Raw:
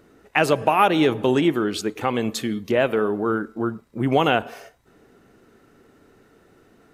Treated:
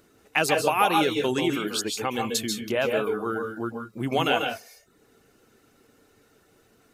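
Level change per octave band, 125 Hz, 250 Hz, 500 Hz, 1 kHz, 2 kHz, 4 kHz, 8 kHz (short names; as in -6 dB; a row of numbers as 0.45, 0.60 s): -6.5, -6.5, -4.5, -3.5, -2.0, +1.0, +5.0 dB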